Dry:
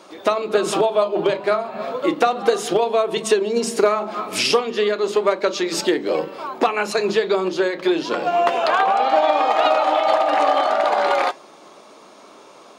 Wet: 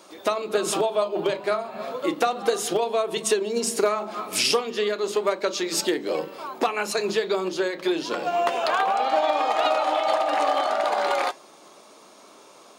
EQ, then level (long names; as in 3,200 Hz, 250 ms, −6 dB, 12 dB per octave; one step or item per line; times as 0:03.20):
high-shelf EQ 6,600 Hz +12 dB
−5.5 dB